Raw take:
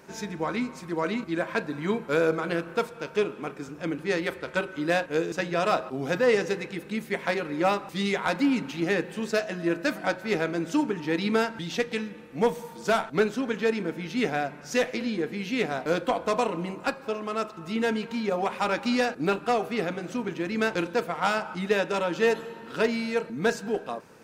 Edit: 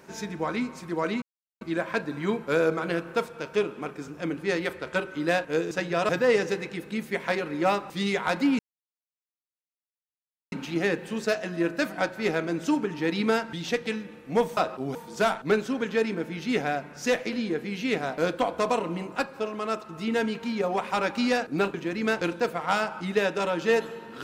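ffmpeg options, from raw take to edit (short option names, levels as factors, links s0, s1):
-filter_complex "[0:a]asplit=7[s0][s1][s2][s3][s4][s5][s6];[s0]atrim=end=1.22,asetpts=PTS-STARTPTS,afade=t=out:st=1.216:d=0.004:c=hsin,apad=pad_dur=0.39[s7];[s1]atrim=start=1.22:end=5.702,asetpts=PTS-STARTPTS,afade=t=in:d=0.004:c=hsin[s8];[s2]atrim=start=6.078:end=8.58,asetpts=PTS-STARTPTS,afade=t=out:st=2.498:d=0.004:c=hsin,apad=pad_dur=1.93[s9];[s3]atrim=start=8.58:end=12.632,asetpts=PTS-STARTPTS,afade=t=in:d=0.004:c=hsin[s10];[s4]atrim=start=5.698:end=6.082[s11];[s5]atrim=start=12.628:end=19.422[s12];[s6]atrim=start=20.278[s13];[s7][s8]concat=n=2:v=0:a=1[s14];[s9][s10]concat=n=2:v=0:a=1[s15];[s14][s15]acrossfade=d=0.004:c1=hsin:c2=hsin[s16];[s16][s11]acrossfade=d=0.004:c1=hsin:c2=hsin[s17];[s17][s12]acrossfade=d=0.004:c1=hsin:c2=hsin[s18];[s18][s13]acrossfade=d=0.004:c1=hsin:c2=hsin"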